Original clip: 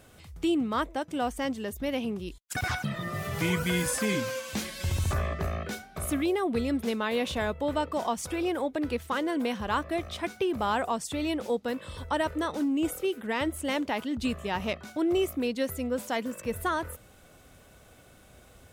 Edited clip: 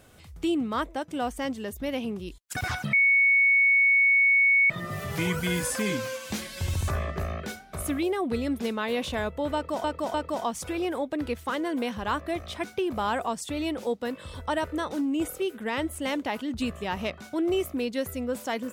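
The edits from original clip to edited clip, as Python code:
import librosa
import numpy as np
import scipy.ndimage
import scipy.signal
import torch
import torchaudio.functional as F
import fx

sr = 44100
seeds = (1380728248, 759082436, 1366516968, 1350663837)

y = fx.edit(x, sr, fx.insert_tone(at_s=2.93, length_s=1.77, hz=2220.0, db=-17.0),
    fx.repeat(start_s=7.77, length_s=0.3, count=3), tone=tone)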